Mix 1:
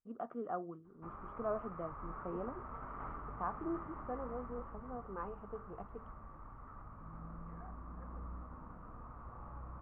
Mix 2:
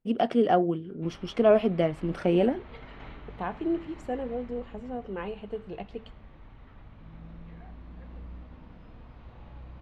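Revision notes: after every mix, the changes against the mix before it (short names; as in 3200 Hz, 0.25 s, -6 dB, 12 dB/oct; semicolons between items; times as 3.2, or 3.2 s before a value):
first voice +8.5 dB; background -8.0 dB; master: remove ladder low-pass 1300 Hz, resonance 75%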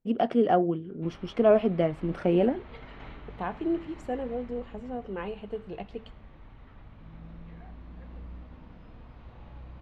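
first voice: add high shelf 3200 Hz -8 dB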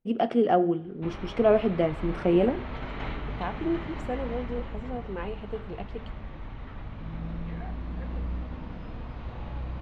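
first voice: send on; background +10.5 dB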